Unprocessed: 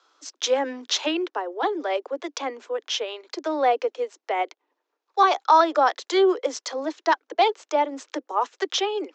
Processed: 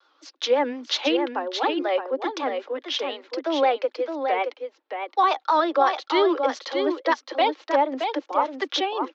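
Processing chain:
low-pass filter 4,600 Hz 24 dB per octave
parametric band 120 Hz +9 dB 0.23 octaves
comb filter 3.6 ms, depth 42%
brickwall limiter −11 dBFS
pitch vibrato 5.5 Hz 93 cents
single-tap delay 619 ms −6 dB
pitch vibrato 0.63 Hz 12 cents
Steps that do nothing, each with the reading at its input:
parametric band 120 Hz: nothing at its input below 240 Hz

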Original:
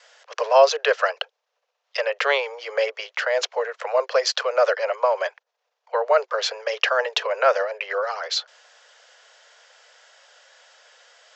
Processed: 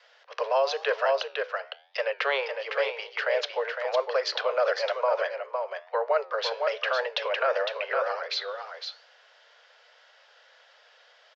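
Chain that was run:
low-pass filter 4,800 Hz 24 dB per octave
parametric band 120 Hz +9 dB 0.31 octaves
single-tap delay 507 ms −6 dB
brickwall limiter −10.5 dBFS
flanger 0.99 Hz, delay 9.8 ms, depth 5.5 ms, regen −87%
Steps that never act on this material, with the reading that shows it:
parametric band 120 Hz: nothing at its input below 380 Hz

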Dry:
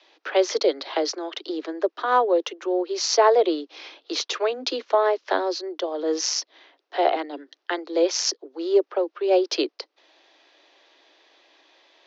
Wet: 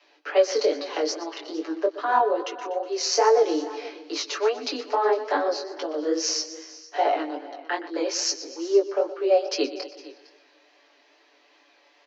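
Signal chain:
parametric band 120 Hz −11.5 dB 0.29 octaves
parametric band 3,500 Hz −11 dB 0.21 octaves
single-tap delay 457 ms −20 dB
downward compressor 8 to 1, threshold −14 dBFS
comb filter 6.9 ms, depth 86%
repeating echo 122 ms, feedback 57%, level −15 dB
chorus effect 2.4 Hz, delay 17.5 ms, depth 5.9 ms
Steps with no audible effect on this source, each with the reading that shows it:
parametric band 120 Hz: nothing at its input below 230 Hz

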